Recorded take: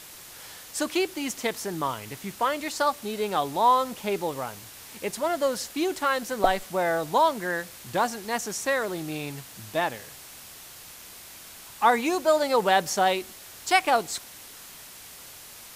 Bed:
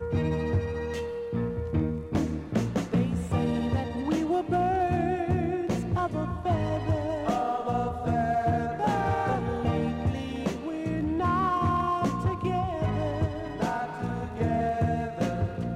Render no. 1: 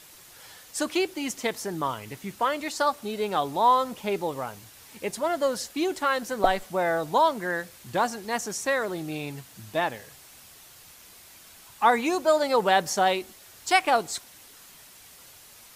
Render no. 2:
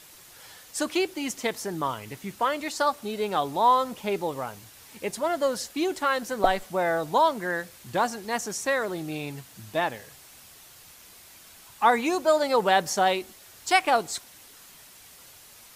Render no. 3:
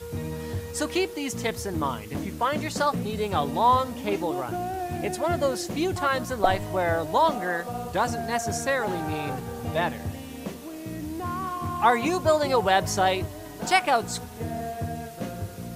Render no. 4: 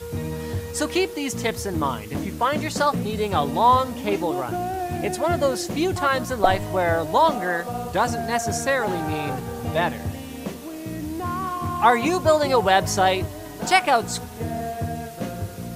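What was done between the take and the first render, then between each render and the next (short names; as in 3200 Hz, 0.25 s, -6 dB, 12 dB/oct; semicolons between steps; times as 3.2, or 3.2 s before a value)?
denoiser 6 dB, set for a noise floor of -45 dBFS
nothing audible
add bed -5.5 dB
gain +3.5 dB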